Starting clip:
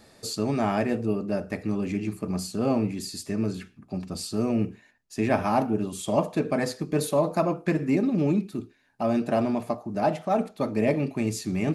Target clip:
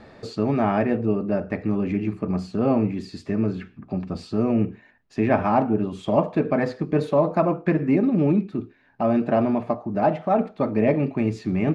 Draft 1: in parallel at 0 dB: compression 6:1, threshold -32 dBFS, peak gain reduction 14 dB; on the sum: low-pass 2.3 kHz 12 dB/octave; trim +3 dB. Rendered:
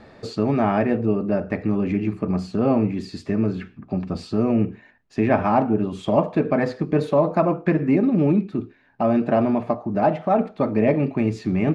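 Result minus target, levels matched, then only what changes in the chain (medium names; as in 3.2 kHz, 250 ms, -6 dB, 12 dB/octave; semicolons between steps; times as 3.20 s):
compression: peak gain reduction -9 dB
change: compression 6:1, threshold -42.5 dBFS, peak gain reduction 23 dB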